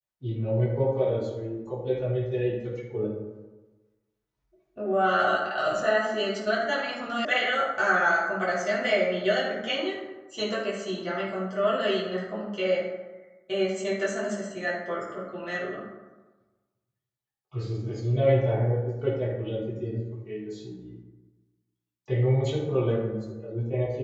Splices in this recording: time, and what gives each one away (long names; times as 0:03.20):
0:07.25: cut off before it has died away